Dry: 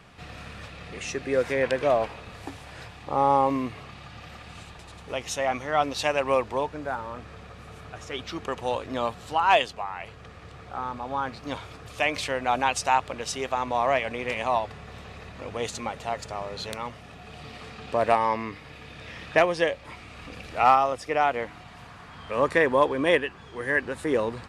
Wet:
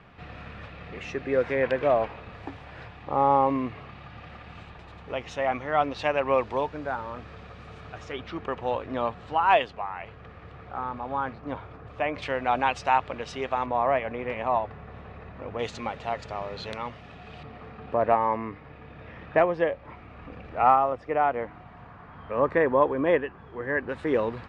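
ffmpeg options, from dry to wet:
-af "asetnsamples=n=441:p=0,asendcmd='6.38 lowpass f 4300;8.12 lowpass f 2400;11.33 lowpass f 1500;12.22 lowpass f 2900;13.66 lowpass f 1700;15.59 lowpass f 3600;17.43 lowpass f 1500;23.89 lowpass f 3000',lowpass=2.6k"

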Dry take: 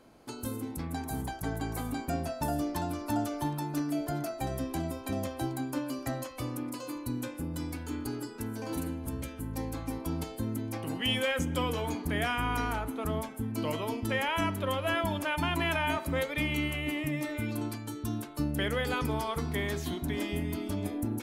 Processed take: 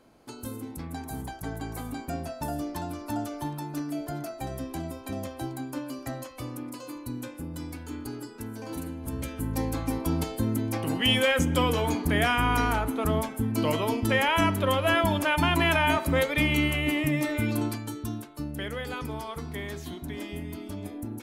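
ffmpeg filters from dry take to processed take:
-af "volume=6.5dB,afade=t=in:st=8.94:d=0.5:silence=0.421697,afade=t=out:st=17.57:d=0.72:silence=0.316228"

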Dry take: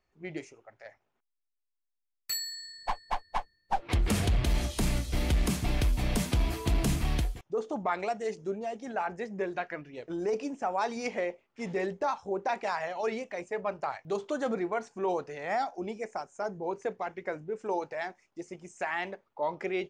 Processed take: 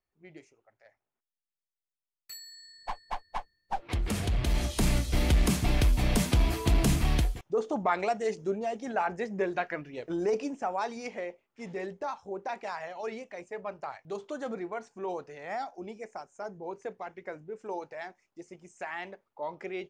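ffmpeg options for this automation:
-af "volume=3dB,afade=t=in:st=2.41:d=0.57:silence=0.398107,afade=t=in:st=4.22:d=0.7:silence=0.473151,afade=t=out:st=10.15:d=0.91:silence=0.398107"

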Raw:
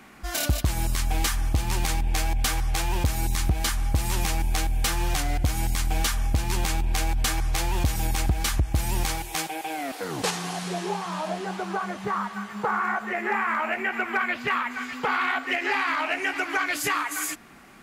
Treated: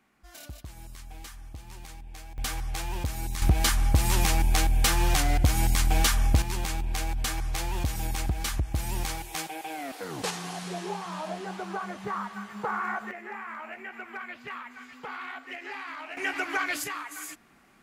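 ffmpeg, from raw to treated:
-af "asetnsamples=n=441:p=0,asendcmd='2.38 volume volume -7dB;3.42 volume volume 2dB;6.42 volume volume -5dB;13.11 volume volume -13.5dB;16.17 volume volume -3dB;16.84 volume volume -10dB',volume=-19dB"

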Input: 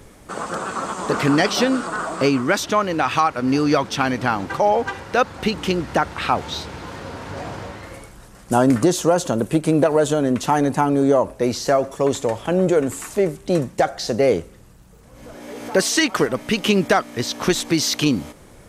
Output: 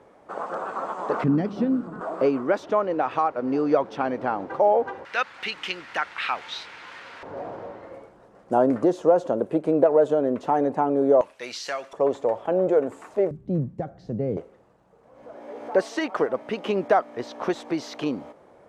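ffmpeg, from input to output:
-af "asetnsamples=n=441:p=0,asendcmd='1.24 bandpass f 190;2.01 bandpass f 540;5.05 bandpass f 2200;7.23 bandpass f 540;11.21 bandpass f 2700;11.93 bandpass f 630;13.31 bandpass f 140;14.37 bandpass f 670',bandpass=f=710:t=q:w=1.3:csg=0"

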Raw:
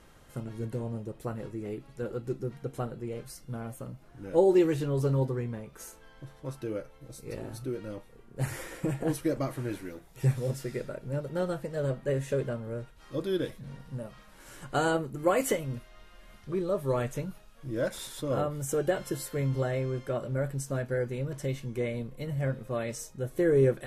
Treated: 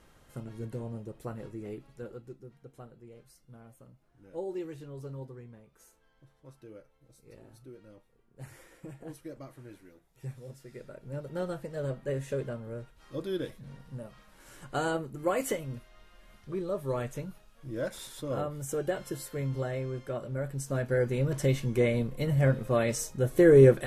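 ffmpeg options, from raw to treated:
-af "volume=17dB,afade=t=out:st=1.75:d=0.61:silence=0.281838,afade=t=in:st=10.63:d=0.73:silence=0.281838,afade=t=in:st=20.47:d=0.9:silence=0.334965"

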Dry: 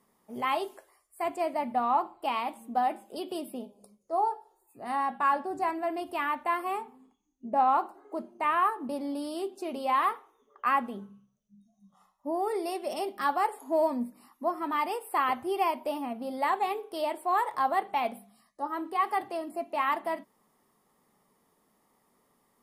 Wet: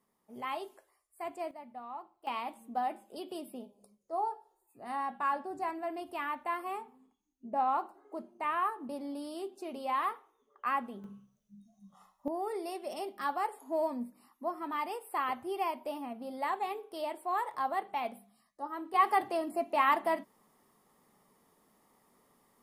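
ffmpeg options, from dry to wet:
-af "asetnsamples=n=441:p=0,asendcmd='1.51 volume volume -17.5dB;2.27 volume volume -6dB;11.04 volume volume 3dB;12.28 volume volume -6dB;18.94 volume volume 1.5dB',volume=-8.5dB"

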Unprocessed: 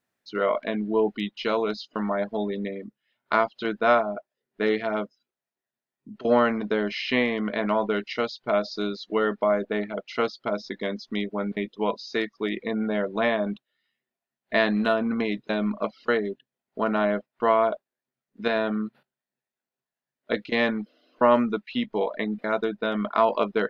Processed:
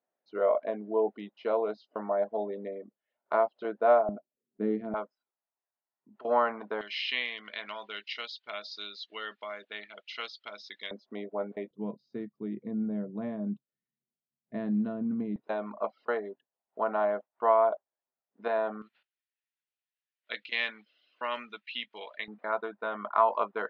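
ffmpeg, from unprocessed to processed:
-af "asetnsamples=n=441:p=0,asendcmd='4.09 bandpass f 240;4.94 bandpass f 910;6.81 bandpass f 3200;10.91 bandpass f 640;11.71 bandpass f 160;15.36 bandpass f 800;18.82 bandpass f 2800;22.28 bandpass f 1000',bandpass=f=620:t=q:w=1.8:csg=0"

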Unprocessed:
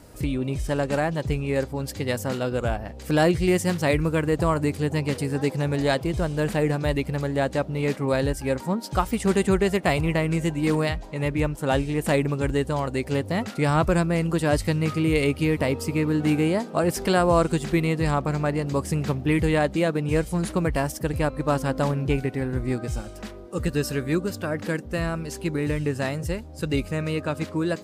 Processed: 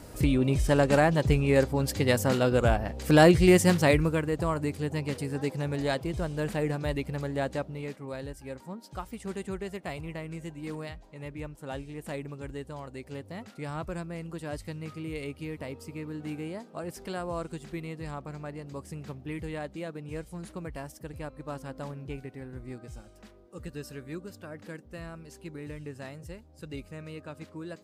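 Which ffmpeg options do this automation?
-af "volume=2dB,afade=t=out:st=3.7:d=0.56:silence=0.375837,afade=t=out:st=7.51:d=0.43:silence=0.375837"

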